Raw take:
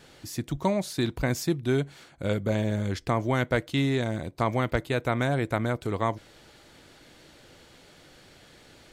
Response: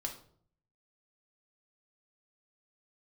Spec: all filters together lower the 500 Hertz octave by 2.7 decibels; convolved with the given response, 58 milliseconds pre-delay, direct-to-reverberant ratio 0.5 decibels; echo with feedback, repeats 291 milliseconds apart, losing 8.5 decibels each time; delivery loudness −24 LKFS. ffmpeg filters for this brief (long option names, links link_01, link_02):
-filter_complex "[0:a]equalizer=frequency=500:width_type=o:gain=-3.5,aecho=1:1:291|582|873|1164:0.376|0.143|0.0543|0.0206,asplit=2[link_01][link_02];[1:a]atrim=start_sample=2205,adelay=58[link_03];[link_02][link_03]afir=irnorm=-1:irlink=0,volume=-0.5dB[link_04];[link_01][link_04]amix=inputs=2:normalize=0,volume=1.5dB"